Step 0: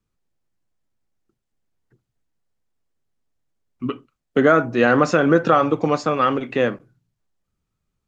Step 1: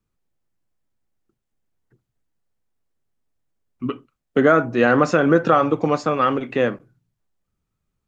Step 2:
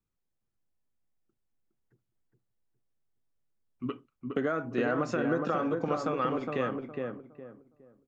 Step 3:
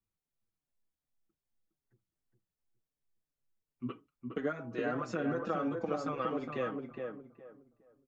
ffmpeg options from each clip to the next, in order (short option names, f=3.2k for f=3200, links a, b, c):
-af "equalizer=f=4.8k:t=o:w=1.7:g=-2.5"
-filter_complex "[0:a]acompressor=threshold=-17dB:ratio=6,asplit=2[a][b];[b]adelay=413,lowpass=f=1.3k:p=1,volume=-3dB,asplit=2[c][d];[d]adelay=413,lowpass=f=1.3k:p=1,volume=0.29,asplit=2[e][f];[f]adelay=413,lowpass=f=1.3k:p=1,volume=0.29,asplit=2[g][h];[h]adelay=413,lowpass=f=1.3k:p=1,volume=0.29[i];[c][e][g][i]amix=inputs=4:normalize=0[j];[a][j]amix=inputs=2:normalize=0,volume=-9dB"
-filter_complex "[0:a]asplit=2[a][b];[b]adelay=5.4,afreqshift=-2.6[c];[a][c]amix=inputs=2:normalize=1,volume=-2dB"